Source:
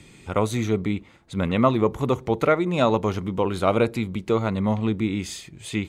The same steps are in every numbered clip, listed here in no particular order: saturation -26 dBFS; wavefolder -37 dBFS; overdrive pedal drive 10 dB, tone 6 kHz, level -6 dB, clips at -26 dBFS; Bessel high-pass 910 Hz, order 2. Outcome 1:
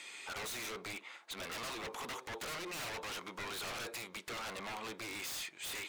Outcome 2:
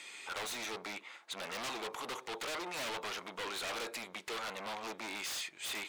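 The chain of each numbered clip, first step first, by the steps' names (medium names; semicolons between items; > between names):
overdrive pedal > Bessel high-pass > saturation > wavefolder; saturation > Bessel high-pass > wavefolder > overdrive pedal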